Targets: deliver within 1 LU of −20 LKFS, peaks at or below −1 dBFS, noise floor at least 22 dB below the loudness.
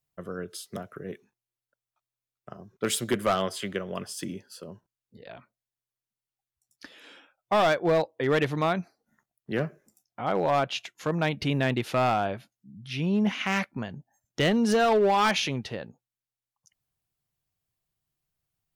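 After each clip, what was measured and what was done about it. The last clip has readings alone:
share of clipped samples 0.8%; peaks flattened at −17.5 dBFS; integrated loudness −27.0 LKFS; sample peak −17.5 dBFS; target loudness −20.0 LKFS
→ clipped peaks rebuilt −17.5 dBFS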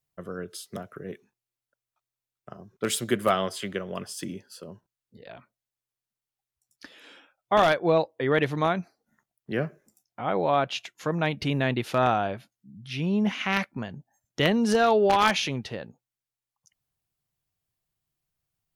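share of clipped samples 0.0%; integrated loudness −26.0 LKFS; sample peak −8.5 dBFS; target loudness −20.0 LKFS
→ level +6 dB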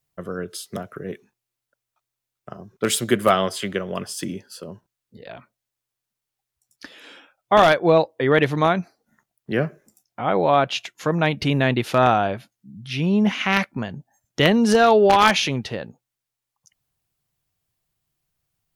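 integrated loudness −20.0 LKFS; sample peak −2.5 dBFS; background noise floor −85 dBFS

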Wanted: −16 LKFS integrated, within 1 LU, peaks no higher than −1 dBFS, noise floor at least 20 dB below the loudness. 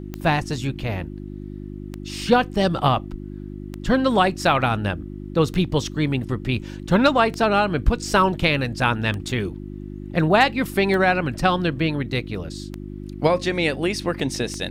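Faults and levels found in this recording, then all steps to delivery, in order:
number of clicks 9; mains hum 50 Hz; hum harmonics up to 350 Hz; level of the hum −32 dBFS; integrated loudness −21.5 LKFS; sample peak −3.5 dBFS; target loudness −16.0 LKFS
→ click removal
hum removal 50 Hz, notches 7
level +5.5 dB
brickwall limiter −1 dBFS

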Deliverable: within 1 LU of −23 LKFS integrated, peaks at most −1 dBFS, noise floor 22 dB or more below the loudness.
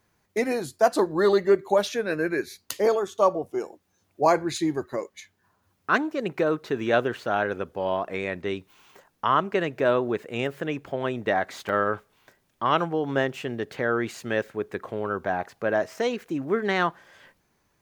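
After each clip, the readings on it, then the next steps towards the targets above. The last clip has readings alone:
number of dropouts 1; longest dropout 1.3 ms; integrated loudness −26.0 LKFS; sample peak −7.0 dBFS; target loudness −23.0 LKFS
→ repair the gap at 0:11.69, 1.3 ms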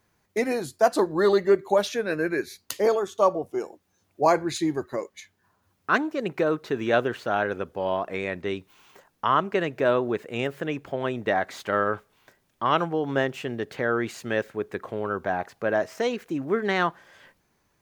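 number of dropouts 0; integrated loudness −26.0 LKFS; sample peak −7.0 dBFS; target loudness −23.0 LKFS
→ level +3 dB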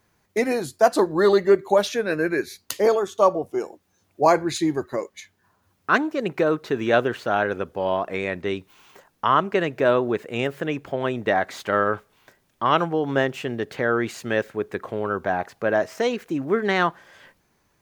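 integrated loudness −23.0 LKFS; sample peak −4.0 dBFS; background noise floor −67 dBFS

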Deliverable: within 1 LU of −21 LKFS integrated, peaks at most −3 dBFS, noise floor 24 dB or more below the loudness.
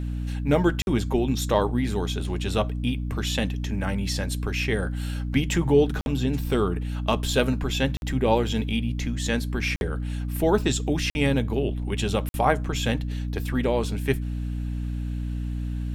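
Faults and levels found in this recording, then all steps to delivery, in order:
number of dropouts 6; longest dropout 51 ms; mains hum 60 Hz; hum harmonics up to 300 Hz; level of the hum −27 dBFS; integrated loudness −26.0 LKFS; sample peak −5.5 dBFS; target loudness −21.0 LKFS
→ repair the gap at 0:00.82/0:06.01/0:07.97/0:09.76/0:11.10/0:12.29, 51 ms
hum removal 60 Hz, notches 5
level +5 dB
brickwall limiter −3 dBFS

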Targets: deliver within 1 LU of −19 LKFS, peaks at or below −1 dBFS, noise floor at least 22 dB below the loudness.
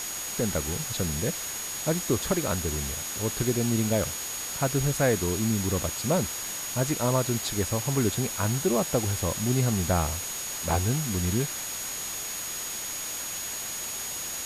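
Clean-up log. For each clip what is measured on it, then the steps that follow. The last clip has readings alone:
interfering tone 6,700 Hz; level of the tone −35 dBFS; background noise floor −34 dBFS; target noise floor −50 dBFS; integrated loudness −27.5 LKFS; sample peak −12.0 dBFS; target loudness −19.0 LKFS
→ notch filter 6,700 Hz, Q 30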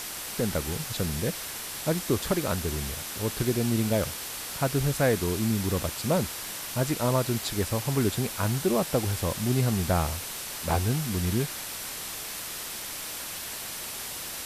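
interfering tone none found; background noise floor −37 dBFS; target noise floor −51 dBFS
→ broadband denoise 14 dB, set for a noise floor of −37 dBFS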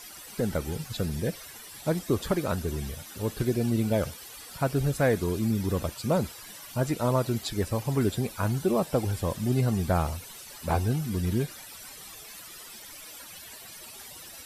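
background noise floor −45 dBFS; target noise floor −51 dBFS
→ broadband denoise 6 dB, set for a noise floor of −45 dBFS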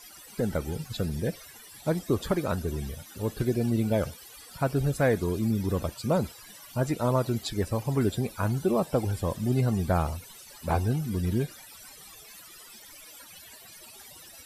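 background noise floor −49 dBFS; target noise floor −51 dBFS
→ broadband denoise 6 dB, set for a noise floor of −49 dBFS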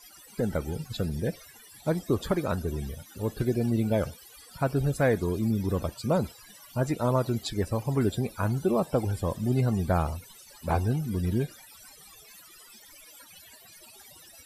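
background noise floor −52 dBFS; integrated loudness −29.0 LKFS; sample peak −13.5 dBFS; target loudness −19.0 LKFS
→ level +10 dB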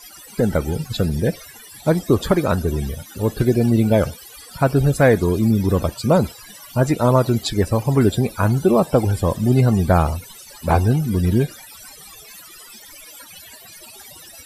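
integrated loudness −19.0 LKFS; sample peak −3.5 dBFS; background noise floor −42 dBFS

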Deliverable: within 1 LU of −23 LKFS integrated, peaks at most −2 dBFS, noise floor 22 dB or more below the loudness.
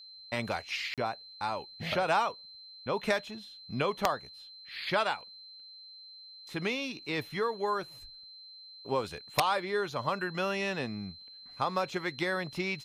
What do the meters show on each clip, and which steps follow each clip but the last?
number of dropouts 1; longest dropout 37 ms; interfering tone 4,100 Hz; level of the tone −48 dBFS; integrated loudness −33.0 LKFS; sample peak −13.0 dBFS; target loudness −23.0 LKFS
→ repair the gap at 0:00.94, 37 ms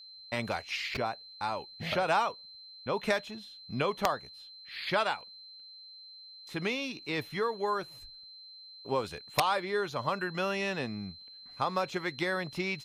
number of dropouts 0; interfering tone 4,100 Hz; level of the tone −48 dBFS
→ notch filter 4,100 Hz, Q 30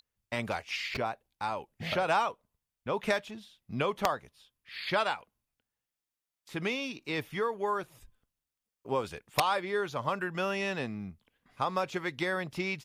interfering tone none found; integrated loudness −33.0 LKFS; sample peak −12.5 dBFS; target loudness −23.0 LKFS
→ level +10 dB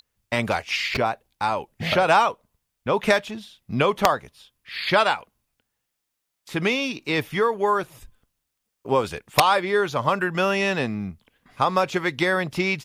integrated loudness −23.0 LKFS; sample peak −2.5 dBFS; background noise floor −80 dBFS

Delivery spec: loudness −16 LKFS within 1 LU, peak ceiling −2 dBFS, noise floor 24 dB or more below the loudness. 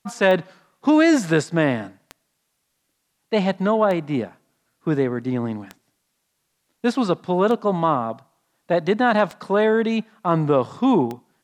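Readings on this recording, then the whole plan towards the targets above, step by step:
number of clicks 7; integrated loudness −21.0 LKFS; sample peak −4.0 dBFS; target loudness −16.0 LKFS
→ click removal
level +5 dB
brickwall limiter −2 dBFS

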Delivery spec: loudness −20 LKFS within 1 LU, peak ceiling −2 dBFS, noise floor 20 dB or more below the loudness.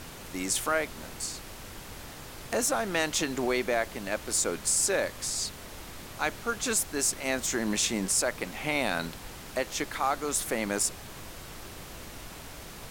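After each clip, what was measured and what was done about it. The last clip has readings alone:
background noise floor −44 dBFS; target noise floor −49 dBFS; integrated loudness −29.0 LKFS; sample peak −11.5 dBFS; target loudness −20.0 LKFS
→ noise reduction from a noise print 6 dB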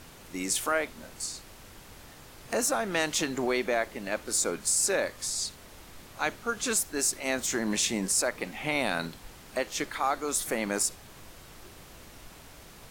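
background noise floor −50 dBFS; integrated loudness −29.0 LKFS; sample peak −12.0 dBFS; target loudness −20.0 LKFS
→ level +9 dB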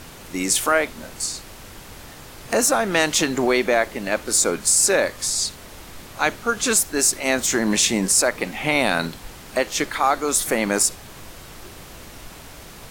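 integrated loudness −20.0 LKFS; sample peak −2.5 dBFS; background noise floor −41 dBFS

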